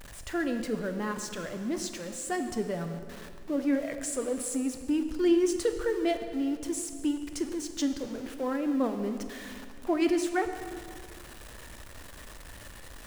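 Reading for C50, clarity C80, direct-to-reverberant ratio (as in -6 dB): 8.0 dB, 9.0 dB, 7.0 dB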